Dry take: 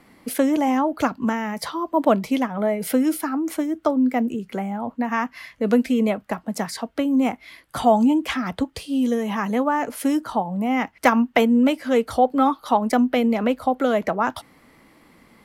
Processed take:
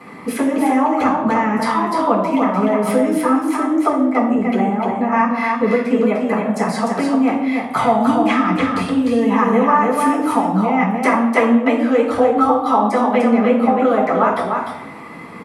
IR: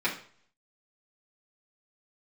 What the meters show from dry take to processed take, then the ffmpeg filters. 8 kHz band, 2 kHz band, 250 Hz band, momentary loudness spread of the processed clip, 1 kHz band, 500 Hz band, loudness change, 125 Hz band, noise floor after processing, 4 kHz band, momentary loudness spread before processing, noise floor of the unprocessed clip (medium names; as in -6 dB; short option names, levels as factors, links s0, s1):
+1.0 dB, +6.0 dB, +4.5 dB, 5 LU, +7.0 dB, +6.0 dB, +5.5 dB, +7.5 dB, -33 dBFS, +0.5 dB, 9 LU, -56 dBFS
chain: -filter_complex "[0:a]highpass=120,acompressor=threshold=0.0178:ratio=3,aecho=1:1:300:0.631[s0];[1:a]atrim=start_sample=2205,asetrate=22491,aresample=44100[s1];[s0][s1]afir=irnorm=-1:irlink=0,volume=1.33"